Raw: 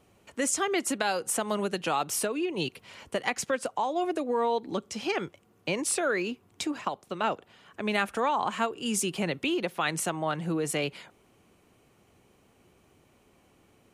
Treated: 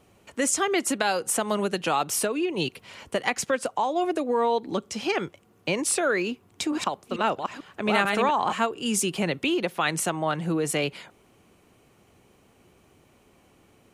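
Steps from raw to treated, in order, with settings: 6.28–8.53 reverse delay 0.442 s, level -3 dB; gain +3.5 dB

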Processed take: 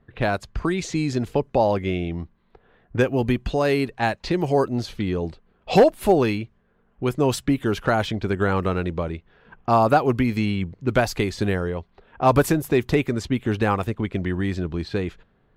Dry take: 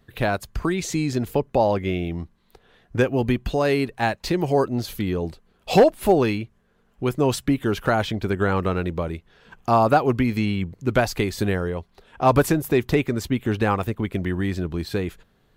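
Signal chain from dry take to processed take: low-pass opened by the level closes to 1800 Hz, open at -17.5 dBFS

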